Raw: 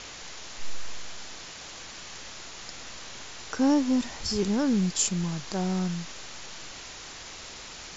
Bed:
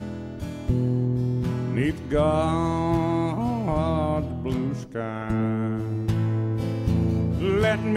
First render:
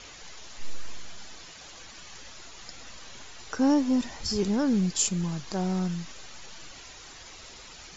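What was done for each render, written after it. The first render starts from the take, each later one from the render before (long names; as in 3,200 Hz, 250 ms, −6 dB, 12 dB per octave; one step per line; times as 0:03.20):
broadband denoise 8 dB, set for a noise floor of −43 dBFS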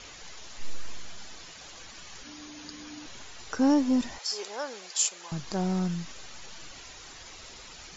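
0:02.23–0:03.06: frequency shifter −300 Hz
0:04.18–0:05.32: high-pass filter 540 Hz 24 dB per octave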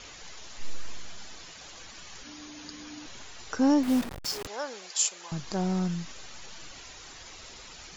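0:03.83–0:04.47: hold until the input has moved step −31.5 dBFS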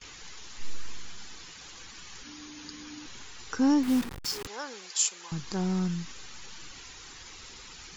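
noise gate with hold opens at −38 dBFS
parametric band 630 Hz −11.5 dB 0.43 octaves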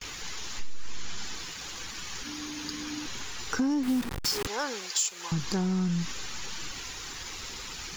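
downward compressor 12 to 1, threshold −30 dBFS, peak gain reduction 11.5 dB
leveller curve on the samples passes 2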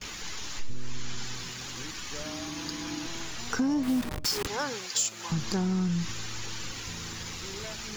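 mix in bed −21.5 dB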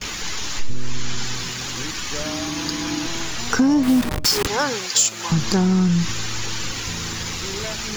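level +10.5 dB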